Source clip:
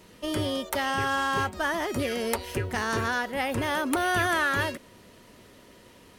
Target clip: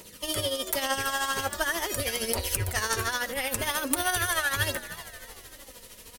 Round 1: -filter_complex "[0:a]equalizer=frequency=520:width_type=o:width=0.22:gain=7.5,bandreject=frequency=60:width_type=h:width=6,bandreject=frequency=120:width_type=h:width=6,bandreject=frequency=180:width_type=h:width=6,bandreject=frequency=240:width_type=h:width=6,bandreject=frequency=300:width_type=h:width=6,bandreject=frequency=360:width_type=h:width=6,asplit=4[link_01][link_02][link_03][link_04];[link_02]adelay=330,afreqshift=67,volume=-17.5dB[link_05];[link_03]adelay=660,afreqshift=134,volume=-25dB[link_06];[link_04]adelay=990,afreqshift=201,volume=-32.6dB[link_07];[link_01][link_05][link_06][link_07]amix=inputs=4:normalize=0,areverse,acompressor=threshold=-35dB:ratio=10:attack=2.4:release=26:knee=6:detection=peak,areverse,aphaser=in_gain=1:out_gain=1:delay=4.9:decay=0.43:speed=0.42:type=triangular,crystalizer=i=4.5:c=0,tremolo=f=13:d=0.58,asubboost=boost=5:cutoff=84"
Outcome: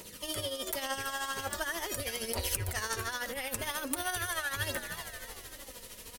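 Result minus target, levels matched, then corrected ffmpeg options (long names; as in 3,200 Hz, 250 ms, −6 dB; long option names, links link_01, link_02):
downward compressor: peak gain reduction +7.5 dB
-filter_complex "[0:a]equalizer=frequency=520:width_type=o:width=0.22:gain=7.5,bandreject=frequency=60:width_type=h:width=6,bandreject=frequency=120:width_type=h:width=6,bandreject=frequency=180:width_type=h:width=6,bandreject=frequency=240:width_type=h:width=6,bandreject=frequency=300:width_type=h:width=6,bandreject=frequency=360:width_type=h:width=6,asplit=4[link_01][link_02][link_03][link_04];[link_02]adelay=330,afreqshift=67,volume=-17.5dB[link_05];[link_03]adelay=660,afreqshift=134,volume=-25dB[link_06];[link_04]adelay=990,afreqshift=201,volume=-32.6dB[link_07];[link_01][link_05][link_06][link_07]amix=inputs=4:normalize=0,areverse,acompressor=threshold=-26.5dB:ratio=10:attack=2.4:release=26:knee=6:detection=peak,areverse,aphaser=in_gain=1:out_gain=1:delay=4.9:decay=0.43:speed=0.42:type=triangular,crystalizer=i=4.5:c=0,tremolo=f=13:d=0.58,asubboost=boost=5:cutoff=84"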